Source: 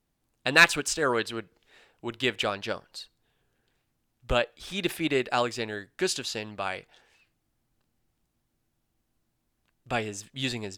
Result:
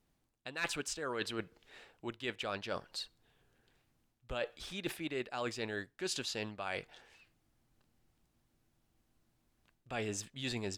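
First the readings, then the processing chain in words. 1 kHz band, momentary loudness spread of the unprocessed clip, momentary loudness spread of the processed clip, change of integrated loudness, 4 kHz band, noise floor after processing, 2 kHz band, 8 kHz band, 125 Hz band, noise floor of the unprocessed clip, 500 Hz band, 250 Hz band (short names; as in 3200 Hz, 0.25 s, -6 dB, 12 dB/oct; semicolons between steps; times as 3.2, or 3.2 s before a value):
-13.0 dB, 16 LU, 10 LU, -12.5 dB, -10.5 dB, -78 dBFS, -15.0 dB, -9.0 dB, -9.0 dB, -78 dBFS, -10.5 dB, -9.5 dB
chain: high shelf 9600 Hz -4.5 dB; reverse; compressor 10:1, threshold -36 dBFS, peak gain reduction 24 dB; reverse; gain +1 dB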